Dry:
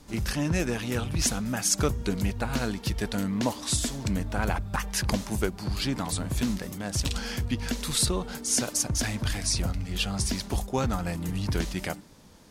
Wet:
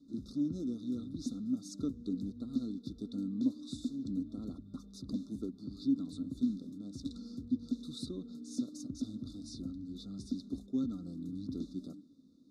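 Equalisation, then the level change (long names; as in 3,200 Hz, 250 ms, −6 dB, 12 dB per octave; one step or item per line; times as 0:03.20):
formant filter i
linear-phase brick-wall band-stop 1,400–3,500 Hz
low-shelf EQ 250 Hz +5.5 dB
0.0 dB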